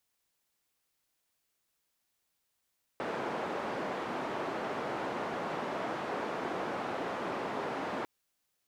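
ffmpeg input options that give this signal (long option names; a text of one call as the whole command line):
ffmpeg -f lavfi -i "anoisesrc=color=white:duration=5.05:sample_rate=44100:seed=1,highpass=frequency=220,lowpass=frequency=920,volume=-16.7dB" out.wav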